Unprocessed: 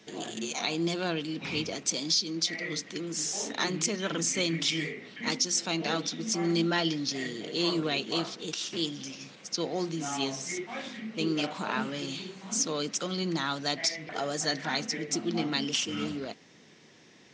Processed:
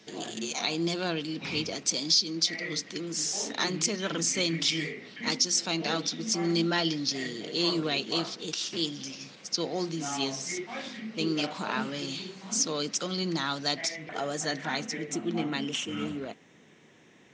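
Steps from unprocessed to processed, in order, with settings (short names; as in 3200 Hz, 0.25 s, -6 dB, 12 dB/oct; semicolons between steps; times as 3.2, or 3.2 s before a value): bell 4800 Hz +4 dB 0.53 oct, from 13.81 s -5.5 dB, from 15.11 s -13.5 dB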